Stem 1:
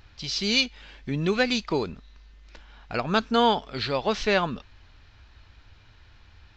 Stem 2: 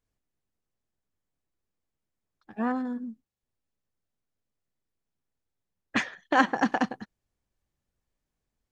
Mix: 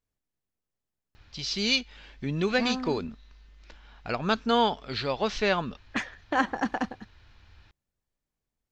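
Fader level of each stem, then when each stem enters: -2.5, -3.5 dB; 1.15, 0.00 s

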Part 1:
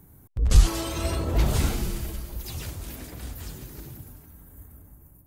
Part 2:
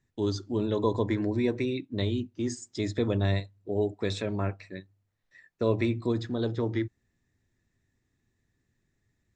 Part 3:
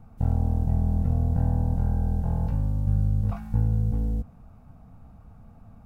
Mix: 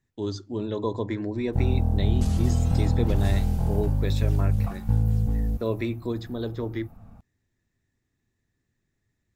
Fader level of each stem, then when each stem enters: -12.5, -1.5, +1.0 dB; 1.70, 0.00, 1.35 s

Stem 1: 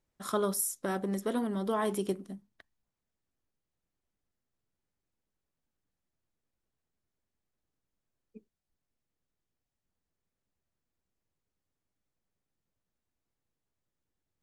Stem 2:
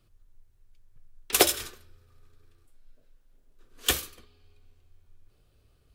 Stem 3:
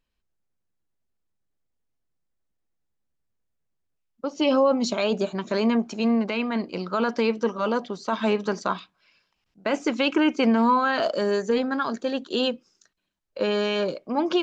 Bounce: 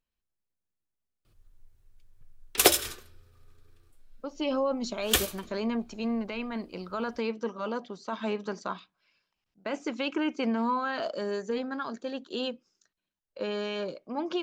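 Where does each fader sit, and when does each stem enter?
off, +0.5 dB, -8.5 dB; off, 1.25 s, 0.00 s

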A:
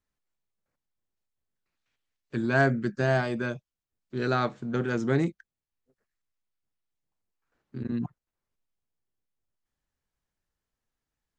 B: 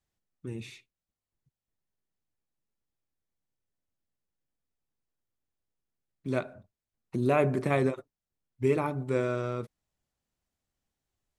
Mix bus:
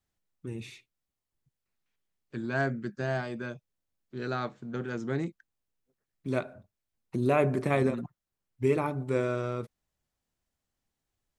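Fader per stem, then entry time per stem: -6.5, 0.0 dB; 0.00, 0.00 s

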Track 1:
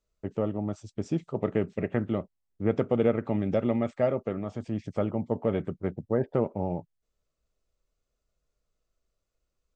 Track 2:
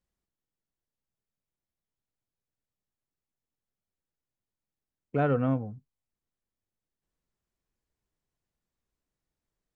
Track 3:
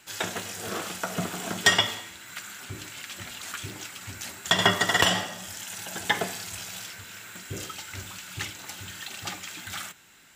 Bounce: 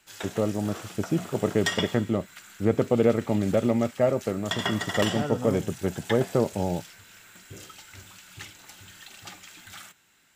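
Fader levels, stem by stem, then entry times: +3.0, -6.0, -8.0 dB; 0.00, 0.00, 0.00 s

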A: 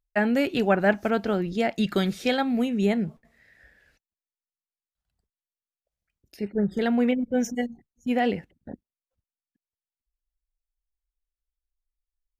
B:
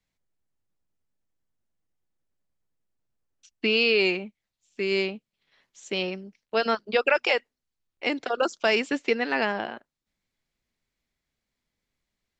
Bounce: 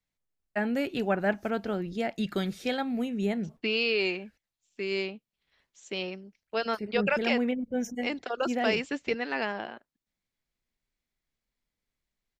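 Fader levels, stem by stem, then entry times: -6.0, -5.5 dB; 0.40, 0.00 s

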